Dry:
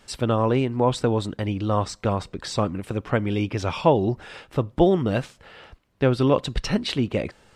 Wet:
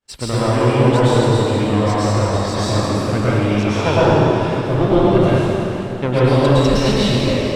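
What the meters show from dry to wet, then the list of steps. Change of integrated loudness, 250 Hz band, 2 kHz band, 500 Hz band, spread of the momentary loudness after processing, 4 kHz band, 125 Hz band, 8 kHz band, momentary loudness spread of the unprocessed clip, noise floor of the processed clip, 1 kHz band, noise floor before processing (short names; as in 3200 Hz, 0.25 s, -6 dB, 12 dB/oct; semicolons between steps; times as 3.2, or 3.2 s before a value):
+8.0 dB, +7.5 dB, +9.5 dB, +7.5 dB, 6 LU, +9.0 dB, +9.5 dB, +9.0 dB, 9 LU, -24 dBFS, +7.5 dB, -58 dBFS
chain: one diode to ground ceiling -20 dBFS; expander -41 dBFS; plate-style reverb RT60 3.2 s, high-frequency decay 0.85×, pre-delay 95 ms, DRR -10 dB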